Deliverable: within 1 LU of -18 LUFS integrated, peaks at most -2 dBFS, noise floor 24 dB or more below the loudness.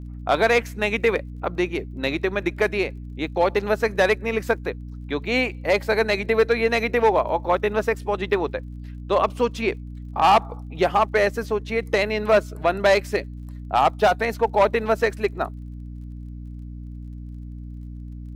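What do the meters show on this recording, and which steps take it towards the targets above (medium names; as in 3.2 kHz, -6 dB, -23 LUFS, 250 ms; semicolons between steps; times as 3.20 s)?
tick rate 33 per s; hum 60 Hz; highest harmonic 300 Hz; hum level -33 dBFS; loudness -22.0 LUFS; peak level -9.0 dBFS; loudness target -18.0 LUFS
-> de-click; hum notches 60/120/180/240/300 Hz; trim +4 dB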